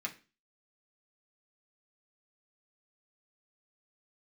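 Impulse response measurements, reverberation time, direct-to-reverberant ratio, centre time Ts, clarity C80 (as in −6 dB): 0.30 s, −1.5 dB, 10 ms, 20.5 dB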